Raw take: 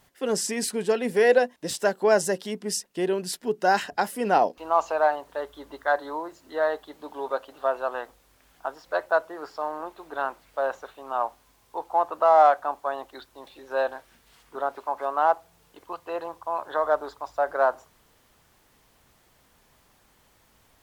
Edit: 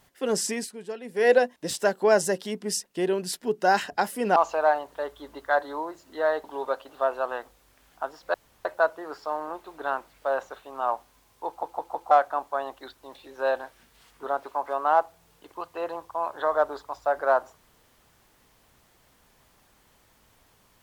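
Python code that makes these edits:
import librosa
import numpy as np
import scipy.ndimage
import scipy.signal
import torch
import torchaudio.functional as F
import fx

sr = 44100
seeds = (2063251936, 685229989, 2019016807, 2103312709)

y = fx.edit(x, sr, fx.fade_down_up(start_s=0.54, length_s=0.74, db=-12.0, fade_s=0.14),
    fx.cut(start_s=4.36, length_s=0.37),
    fx.cut(start_s=6.81, length_s=0.26),
    fx.insert_room_tone(at_s=8.97, length_s=0.31),
    fx.stutter_over(start_s=11.79, slice_s=0.16, count=4), tone=tone)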